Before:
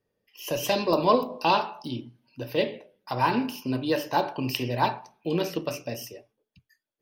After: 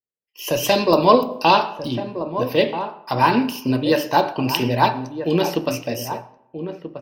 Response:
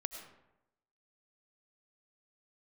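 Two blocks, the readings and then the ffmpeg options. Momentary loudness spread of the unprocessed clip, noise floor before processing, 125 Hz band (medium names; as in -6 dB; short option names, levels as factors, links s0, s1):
14 LU, -83 dBFS, +7.5 dB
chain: -filter_complex "[0:a]agate=range=0.0224:threshold=0.00398:ratio=3:detection=peak,asplit=2[s0][s1];[s1]adelay=1283,volume=0.316,highshelf=f=4000:g=-28.9[s2];[s0][s2]amix=inputs=2:normalize=0,asplit=2[s3][s4];[1:a]atrim=start_sample=2205[s5];[s4][s5]afir=irnorm=-1:irlink=0,volume=0.237[s6];[s3][s6]amix=inputs=2:normalize=0,volume=2"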